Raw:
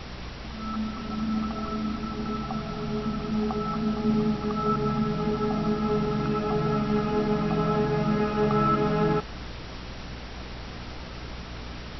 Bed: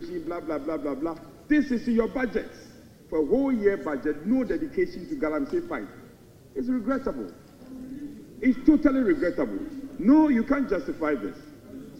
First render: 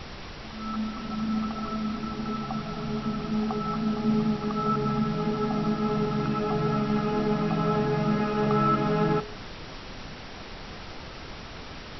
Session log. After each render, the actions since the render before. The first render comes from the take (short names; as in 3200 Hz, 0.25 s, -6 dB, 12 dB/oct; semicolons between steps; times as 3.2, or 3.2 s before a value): de-hum 60 Hz, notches 11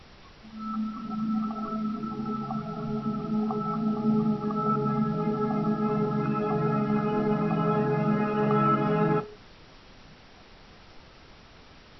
noise print and reduce 11 dB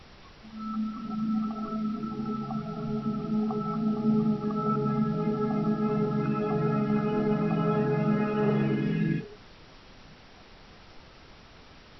8.48–9.27 spectral repair 400–1600 Hz both; dynamic EQ 1000 Hz, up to -6 dB, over -46 dBFS, Q 1.7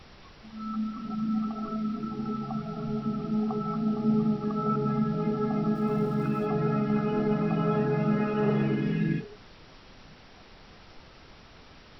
5.75–6.46 sample gate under -49.5 dBFS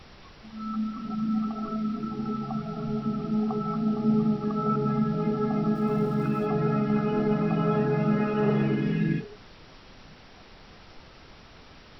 gain +1.5 dB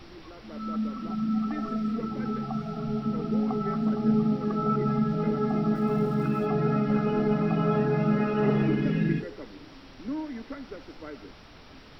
add bed -15.5 dB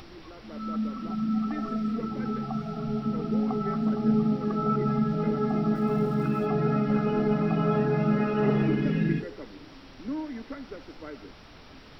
upward compressor, threshold -46 dBFS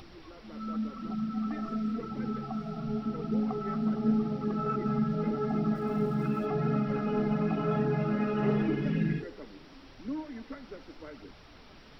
self-modulated delay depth 0.05 ms; flange 0.89 Hz, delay 0.2 ms, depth 5.8 ms, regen -46%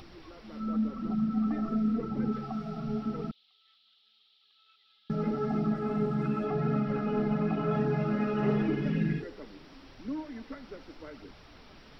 0.6–2.32 tilt shelf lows +4.5 dB, about 1100 Hz; 3.31–5.1 Butterworth band-pass 3600 Hz, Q 3.2; 5.66–7.74 air absorption 57 m